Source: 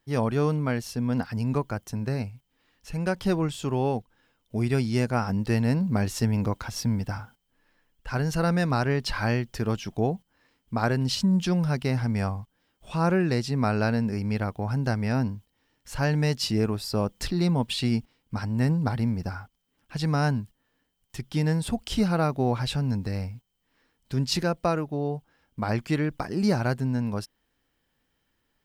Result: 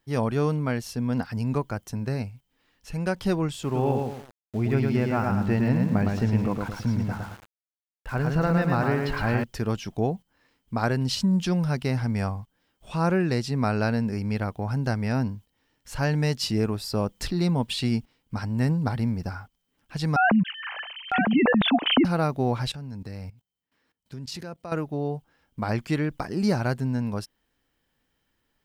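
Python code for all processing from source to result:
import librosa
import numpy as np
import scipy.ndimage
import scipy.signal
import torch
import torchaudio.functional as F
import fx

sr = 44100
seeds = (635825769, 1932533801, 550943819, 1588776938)

y = fx.chain(x, sr, fx.lowpass(hz=2700.0, slope=12),
    fx.echo_feedback(ms=111, feedback_pct=37, wet_db=-3.5),
    fx.sample_gate(floor_db=-42.0), at=(3.63, 9.44))
y = fx.chain(y, sr, fx.sine_speech(),
    fx.echo_single(ms=956, db=-11.5),
    fx.env_flatten(amount_pct=70), at=(20.16, 22.05))
y = fx.chain(y, sr, fx.highpass(hz=61.0, slope=12),
    fx.level_steps(step_db=18), at=(22.71, 24.72))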